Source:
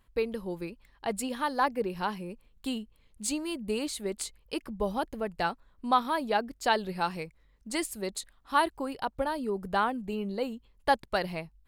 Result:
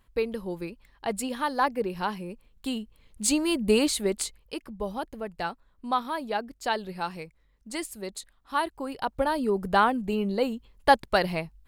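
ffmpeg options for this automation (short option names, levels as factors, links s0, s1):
-af "volume=7.94,afade=t=in:st=2.71:d=1.04:silence=0.398107,afade=t=out:st=3.75:d=0.82:silence=0.251189,afade=t=in:st=8.72:d=0.69:silence=0.398107"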